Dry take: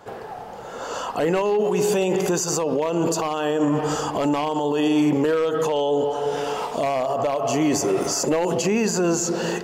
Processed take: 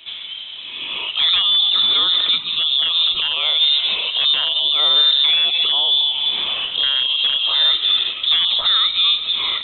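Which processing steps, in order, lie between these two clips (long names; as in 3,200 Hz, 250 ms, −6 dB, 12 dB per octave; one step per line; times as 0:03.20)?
harmonic generator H 3 −29 dB, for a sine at −11.5 dBFS
voice inversion scrambler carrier 3,900 Hz
level +5 dB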